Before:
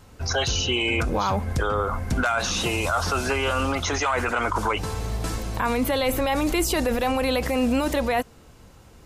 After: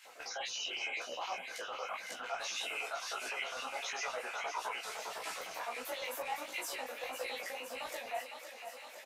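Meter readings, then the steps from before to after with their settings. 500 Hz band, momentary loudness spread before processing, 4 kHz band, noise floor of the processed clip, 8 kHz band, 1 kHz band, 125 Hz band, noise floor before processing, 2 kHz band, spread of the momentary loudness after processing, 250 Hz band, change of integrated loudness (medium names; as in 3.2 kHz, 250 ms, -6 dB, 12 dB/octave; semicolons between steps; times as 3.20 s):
-18.0 dB, 5 LU, -12.5 dB, -51 dBFS, -12.5 dB, -15.0 dB, under -40 dB, -50 dBFS, -12.5 dB, 5 LU, -32.5 dB, -15.5 dB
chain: reverb removal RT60 0.92 s; high-pass 160 Hz 12 dB/octave; peak limiter -23.5 dBFS, peak gain reduction 10.5 dB; compression 12:1, threshold -38 dBFS, peak gain reduction 12 dB; LFO high-pass square 9.8 Hz 650–2200 Hz; doubling 16 ms -3 dB; thinning echo 508 ms, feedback 76%, high-pass 310 Hz, level -8.5 dB; detune thickener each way 53 cents; trim +1.5 dB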